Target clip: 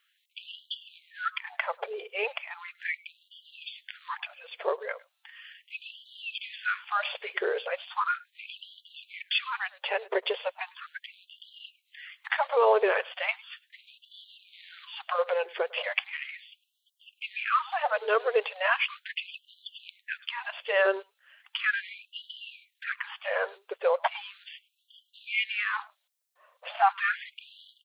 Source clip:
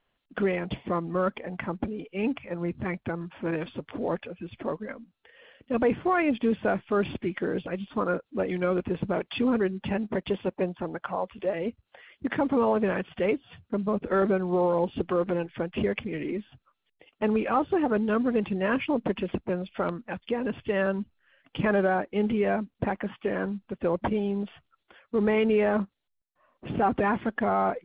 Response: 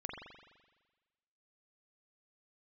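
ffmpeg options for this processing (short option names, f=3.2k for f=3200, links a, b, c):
-af "highshelf=f=3.1k:g=11.5,aecho=1:1:103:0.0708,afftfilt=real='re*gte(b*sr/1024,380*pow(2900/380,0.5+0.5*sin(2*PI*0.37*pts/sr)))':imag='im*gte(b*sr/1024,380*pow(2900/380,0.5+0.5*sin(2*PI*0.37*pts/sr)))':win_size=1024:overlap=0.75,volume=3dB"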